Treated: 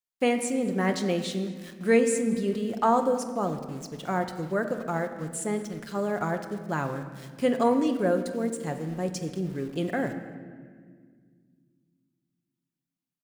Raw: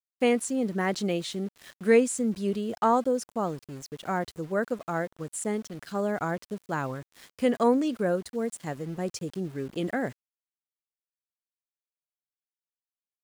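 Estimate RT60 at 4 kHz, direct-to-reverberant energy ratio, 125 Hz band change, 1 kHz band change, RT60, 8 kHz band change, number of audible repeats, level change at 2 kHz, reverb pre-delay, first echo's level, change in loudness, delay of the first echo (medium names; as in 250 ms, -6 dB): 1.1 s, 6.0 dB, +2.5 dB, +1.5 dB, 1.8 s, +0.5 dB, 1, +0.5 dB, 6 ms, -21.5 dB, +1.0 dB, 220 ms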